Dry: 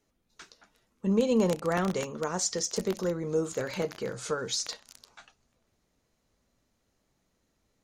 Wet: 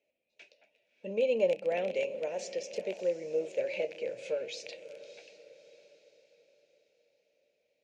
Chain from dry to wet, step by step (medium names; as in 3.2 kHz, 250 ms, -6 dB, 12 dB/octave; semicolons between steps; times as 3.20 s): two resonant band-passes 1.2 kHz, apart 2.1 oct; echo that smears into a reverb 614 ms, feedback 43%, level -14 dB; trim +7 dB